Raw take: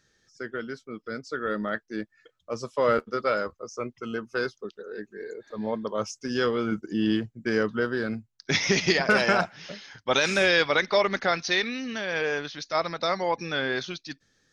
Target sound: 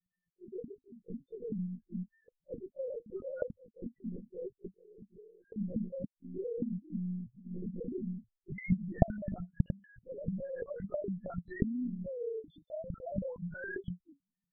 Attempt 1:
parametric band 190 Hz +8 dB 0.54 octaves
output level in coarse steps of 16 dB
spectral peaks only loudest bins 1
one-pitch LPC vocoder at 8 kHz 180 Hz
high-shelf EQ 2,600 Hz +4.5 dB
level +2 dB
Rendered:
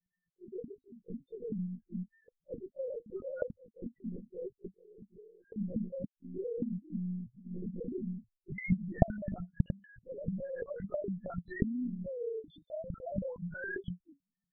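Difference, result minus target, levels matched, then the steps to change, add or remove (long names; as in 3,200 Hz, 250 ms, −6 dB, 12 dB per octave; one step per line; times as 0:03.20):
2,000 Hz band +2.5 dB
change: high-shelf EQ 2,600 Hz −4.5 dB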